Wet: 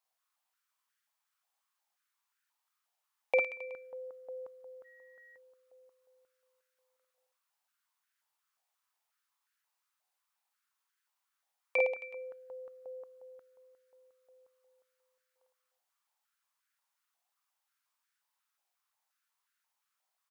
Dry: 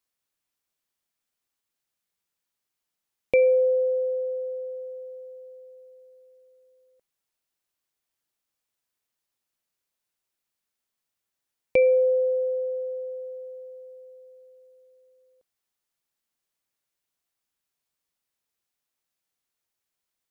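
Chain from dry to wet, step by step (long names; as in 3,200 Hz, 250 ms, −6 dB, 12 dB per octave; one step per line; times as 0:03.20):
reverse bouncing-ball delay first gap 50 ms, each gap 1.2×, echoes 5
0:04.84–0:05.36: steady tone 1,900 Hz −59 dBFS
high-pass on a step sequencer 5.6 Hz 750–1,500 Hz
level −4 dB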